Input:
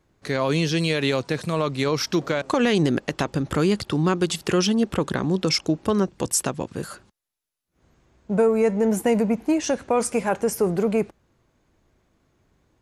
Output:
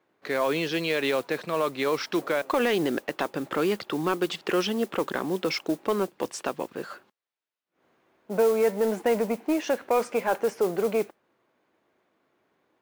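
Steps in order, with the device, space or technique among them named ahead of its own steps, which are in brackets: carbon microphone (band-pass 350–3200 Hz; saturation -12.5 dBFS, distortion -22 dB; modulation noise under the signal 21 dB)

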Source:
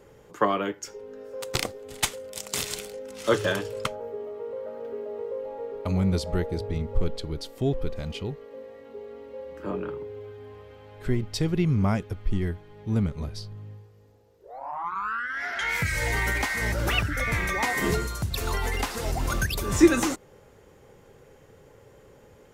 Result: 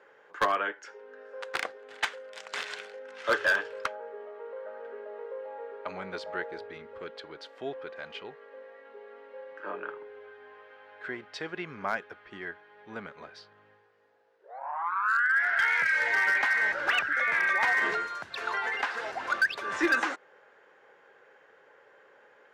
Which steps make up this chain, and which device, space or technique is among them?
megaphone (band-pass 660–2800 Hz; peaking EQ 1.6 kHz +10 dB 0.36 oct; hard clipper -18.5 dBFS, distortion -17 dB); 6.63–7.17 s: peaking EQ 800 Hz -7 dB 0.78 oct

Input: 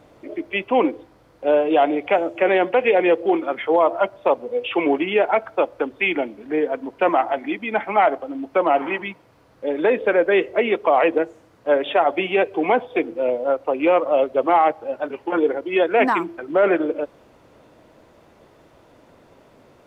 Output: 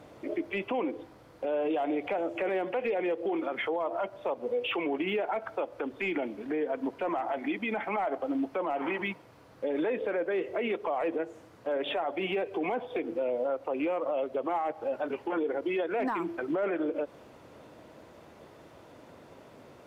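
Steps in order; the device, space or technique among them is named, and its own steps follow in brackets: podcast mastering chain (high-pass 63 Hz; de-esser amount 95%; compression 4:1, threshold -23 dBFS, peak gain reduction 9 dB; peak limiter -22.5 dBFS, peak gain reduction 9 dB; MP3 112 kbps 48 kHz)

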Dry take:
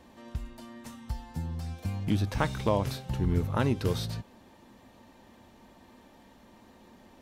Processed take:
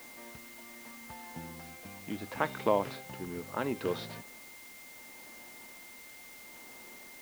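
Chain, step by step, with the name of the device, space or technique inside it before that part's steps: shortwave radio (band-pass 290–2800 Hz; tremolo 0.74 Hz, depth 53%; whistle 2.1 kHz -53 dBFS; white noise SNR 14 dB); trim +1 dB

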